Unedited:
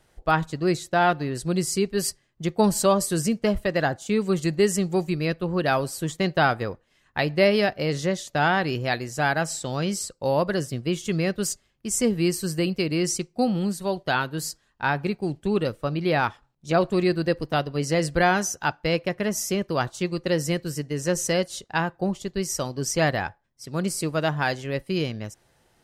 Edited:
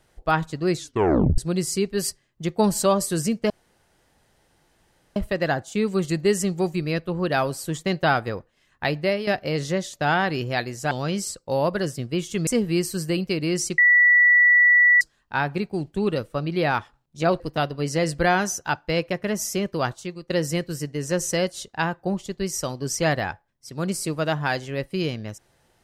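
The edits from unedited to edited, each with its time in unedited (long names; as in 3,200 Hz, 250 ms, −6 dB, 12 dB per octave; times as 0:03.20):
0:00.77: tape stop 0.61 s
0:03.50: splice in room tone 1.66 s
0:07.25–0:07.61: fade out, to −11.5 dB
0:09.25–0:09.65: remove
0:11.21–0:11.96: remove
0:13.27–0:14.50: beep over 1,950 Hz −12 dBFS
0:16.89–0:17.36: remove
0:19.85–0:20.26: fade out quadratic, to −11 dB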